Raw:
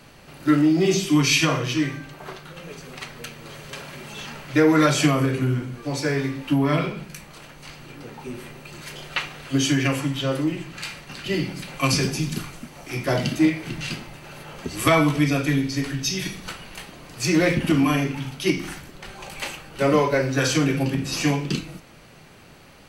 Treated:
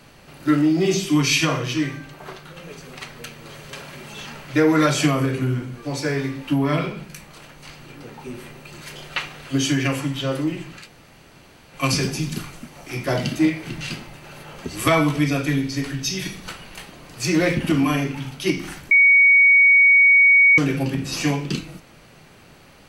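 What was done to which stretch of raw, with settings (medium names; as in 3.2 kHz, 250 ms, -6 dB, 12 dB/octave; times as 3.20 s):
10.81–11.76 s: room tone, crossfade 0.16 s
18.91–20.58 s: bleep 2.24 kHz -9.5 dBFS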